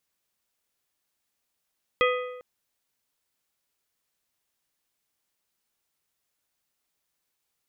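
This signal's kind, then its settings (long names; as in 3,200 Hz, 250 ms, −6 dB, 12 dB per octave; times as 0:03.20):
struck metal plate, length 0.40 s, lowest mode 499 Hz, modes 5, decay 1.08 s, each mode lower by 2.5 dB, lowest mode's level −19.5 dB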